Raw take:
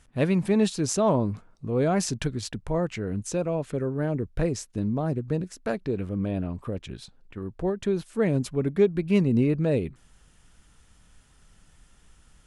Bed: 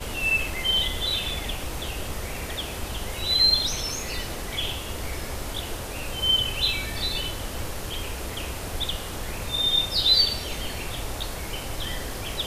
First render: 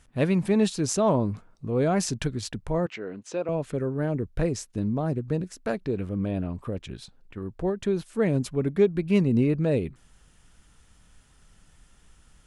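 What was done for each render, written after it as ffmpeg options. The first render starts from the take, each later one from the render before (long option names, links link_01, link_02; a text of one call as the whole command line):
ffmpeg -i in.wav -filter_complex "[0:a]asettb=1/sr,asplit=3[link_01][link_02][link_03];[link_01]atrim=end=2.864[link_04];[link_02]atrim=start=2.86:end=3.49,asetpts=PTS-STARTPTS,afade=type=in:duration=0.004:curve=qsin,afade=type=out:start_time=0.626:duration=0.004:curve=qsin,highpass=340,lowpass=4300[link_05];[link_03]atrim=start=3.486[link_06];[link_04][link_05]acrossfade=duration=0.004:curve1=hsin:curve2=qsin[link_07];[link_07][link_06]acrossfade=duration=0.004:curve1=qsin:curve2=hsin" out.wav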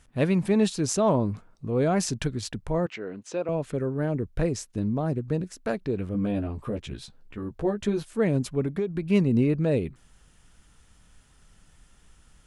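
ffmpeg -i in.wav -filter_complex "[0:a]asettb=1/sr,asplit=3[link_01][link_02][link_03];[link_01]atrim=end=6.134[link_04];[link_02]atrim=start=6.13:end=8.13,asetpts=PTS-STARTPTS,afade=type=in:duration=0.004:curve=qsin,afade=type=out:start_time=1.996:duration=0.004:curve=qsin,asplit=2[link_05][link_06];[link_06]adelay=14,volume=-3dB[link_07];[link_05][link_07]amix=inputs=2:normalize=0,atrim=end_sample=88200[link_08];[link_03]atrim=start=8.126[link_09];[link_04][link_08]acrossfade=duration=0.004:curve1=hsin:curve2=qsin[link_10];[link_10][link_09]acrossfade=duration=0.004:curve1=qsin:curve2=hsin,asettb=1/sr,asplit=3[link_11][link_12][link_13];[link_11]atrim=end=8.634[link_14];[link_12]atrim=start=8.63:end=9.07,asetpts=PTS-STARTPTS,afade=type=in:duration=0.004:curve=qsin,afade=type=out:start_time=0.436:duration=0.004:curve=qsin,acompressor=threshold=-22dB:ratio=10:attack=3.2:release=140:knee=1:detection=peak[link_15];[link_13]atrim=start=9.066[link_16];[link_14][link_15]acrossfade=duration=0.004:curve1=hsin:curve2=qsin[link_17];[link_17][link_16]acrossfade=duration=0.004:curve1=qsin:curve2=hsin" out.wav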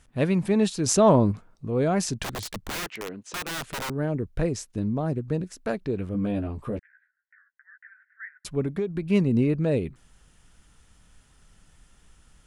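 ffmpeg -i in.wav -filter_complex "[0:a]asettb=1/sr,asplit=3[link_01][link_02][link_03];[link_01]atrim=end=0.864[link_04];[link_02]atrim=start=0.86:end=1.32,asetpts=PTS-STARTPTS,afade=type=in:duration=0.004:curve=qsin,afade=type=out:start_time=0.456:duration=0.004:curve=qsin,acontrast=31[link_05];[link_03]atrim=start=1.316[link_06];[link_04][link_05]acrossfade=duration=0.004:curve1=hsin:curve2=qsin[link_07];[link_07][link_06]acrossfade=duration=0.004:curve1=qsin:curve2=hsin,asettb=1/sr,asplit=3[link_08][link_09][link_10];[link_08]atrim=end=2.234[link_11];[link_09]atrim=start=2.23:end=3.9,asetpts=PTS-STARTPTS,afade=type=in:duration=0.004:curve=qsin,afade=type=out:start_time=1.666:duration=0.004:curve=qsin,aeval=exprs='(mod(22.4*val(0)+1,2)-1)/22.4':channel_layout=same[link_12];[link_10]atrim=start=3.896[link_13];[link_11][link_12]acrossfade=duration=0.004:curve1=hsin:curve2=qsin[link_14];[link_14][link_13]acrossfade=duration=0.004:curve1=qsin:curve2=hsin,asettb=1/sr,asplit=3[link_15][link_16][link_17];[link_15]atrim=end=6.794[link_18];[link_16]atrim=start=6.79:end=8.45,asetpts=PTS-STARTPTS,afade=type=in:duration=0.004:curve=qsin,afade=type=out:start_time=1.656:duration=0.004:curve=qsin,asuperpass=centerf=1700:order=8:qfactor=3[link_19];[link_17]atrim=start=8.446[link_20];[link_18][link_19]acrossfade=duration=0.004:curve1=hsin:curve2=qsin[link_21];[link_21][link_20]acrossfade=duration=0.004:curve1=qsin:curve2=hsin" out.wav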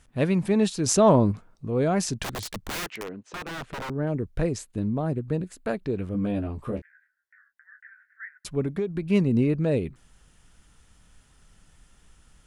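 ffmpeg -i in.wav -filter_complex "[0:a]asettb=1/sr,asplit=3[link_01][link_02][link_03];[link_01]atrim=end=3.034[link_04];[link_02]atrim=start=3.03:end=4.07,asetpts=PTS-STARTPTS,afade=type=in:duration=0.004:curve=qsin,afade=type=out:start_time=1.036:duration=0.004:curve=qsin,lowpass=frequency=1800:poles=1[link_05];[link_03]atrim=start=4.066[link_06];[link_04][link_05]acrossfade=duration=0.004:curve1=hsin:curve2=qsin[link_07];[link_07][link_06]acrossfade=duration=0.004:curve1=qsin:curve2=hsin,asettb=1/sr,asplit=3[link_08][link_09][link_10];[link_08]atrim=end=4.584[link_11];[link_09]atrim=start=4.58:end=5.83,asetpts=PTS-STARTPTS,afade=type=in:duration=0.004:curve=qsin,afade=type=out:start_time=1.246:duration=0.004:curve=qsin,equalizer=frequency=5600:width=4.9:gain=-12[link_12];[link_10]atrim=start=5.826[link_13];[link_11][link_12]acrossfade=duration=0.004:curve1=hsin:curve2=qsin[link_14];[link_14][link_13]acrossfade=duration=0.004:curve1=qsin:curve2=hsin,asettb=1/sr,asplit=3[link_15][link_16][link_17];[link_15]atrim=end=6.604[link_18];[link_16]atrim=start=6.6:end=8.24,asetpts=PTS-STARTPTS,afade=type=in:duration=0.004:curve=qsin,afade=type=out:start_time=1.636:duration=0.004:curve=qsin,asplit=2[link_19][link_20];[link_20]adelay=26,volume=-8dB[link_21];[link_19][link_21]amix=inputs=2:normalize=0,atrim=end_sample=72324[link_22];[link_17]atrim=start=8.236[link_23];[link_18][link_22]acrossfade=duration=0.004:curve1=hsin:curve2=qsin[link_24];[link_24][link_23]acrossfade=duration=0.004:curve1=qsin:curve2=hsin" out.wav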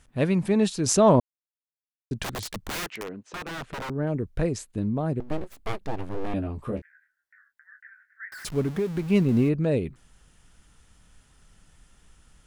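ffmpeg -i in.wav -filter_complex "[0:a]asettb=1/sr,asplit=3[link_01][link_02][link_03];[link_01]atrim=end=5.204[link_04];[link_02]atrim=start=5.2:end=6.34,asetpts=PTS-STARTPTS,afade=type=in:duration=0.004:curve=qsin,afade=type=out:start_time=1.136:duration=0.004:curve=qsin,aeval=exprs='abs(val(0))':channel_layout=same[link_05];[link_03]atrim=start=6.336[link_06];[link_04][link_05]acrossfade=duration=0.004:curve1=hsin:curve2=qsin[link_07];[link_07][link_06]acrossfade=duration=0.004:curve1=qsin:curve2=hsin,asettb=1/sr,asplit=3[link_08][link_09][link_10];[link_08]atrim=end=8.324[link_11];[link_09]atrim=start=8.32:end=9.49,asetpts=PTS-STARTPTS,afade=type=in:duration=0.004:curve=qsin,afade=type=out:start_time=1.166:duration=0.004:curve=qsin,aeval=exprs='val(0)+0.5*0.0158*sgn(val(0))':channel_layout=same[link_12];[link_10]atrim=start=9.486[link_13];[link_11][link_12]acrossfade=duration=0.004:curve1=hsin:curve2=qsin[link_14];[link_14][link_13]acrossfade=duration=0.004:curve1=qsin:curve2=hsin,asplit=3[link_15][link_16][link_17];[link_15]atrim=end=1.2,asetpts=PTS-STARTPTS,afade=type=out:start_time=1.196:duration=0.004:curve=hsin[link_18];[link_16]atrim=start=1.2:end=2.11,asetpts=PTS-STARTPTS,volume=0[link_19];[link_17]atrim=start=2.11,asetpts=PTS-STARTPTS,afade=type=in:duration=0.004:curve=hsin[link_20];[link_18][link_19][link_20]concat=n=3:v=0:a=1" out.wav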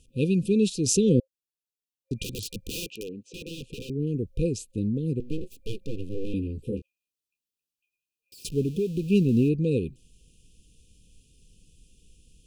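ffmpeg -i in.wav -af "afftfilt=real='re*(1-between(b*sr/4096,530,2400))':imag='im*(1-between(b*sr/4096,530,2400))':win_size=4096:overlap=0.75" out.wav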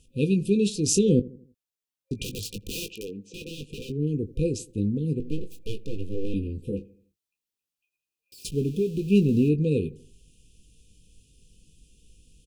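ffmpeg -i in.wav -filter_complex "[0:a]asplit=2[link_01][link_02];[link_02]adelay=20,volume=-9dB[link_03];[link_01][link_03]amix=inputs=2:normalize=0,asplit=2[link_04][link_05];[link_05]adelay=81,lowpass=frequency=850:poles=1,volume=-19dB,asplit=2[link_06][link_07];[link_07]adelay=81,lowpass=frequency=850:poles=1,volume=0.47,asplit=2[link_08][link_09];[link_09]adelay=81,lowpass=frequency=850:poles=1,volume=0.47,asplit=2[link_10][link_11];[link_11]adelay=81,lowpass=frequency=850:poles=1,volume=0.47[link_12];[link_04][link_06][link_08][link_10][link_12]amix=inputs=5:normalize=0" out.wav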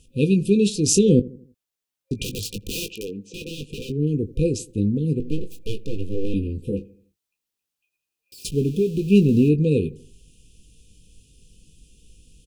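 ffmpeg -i in.wav -af "volume=4.5dB" out.wav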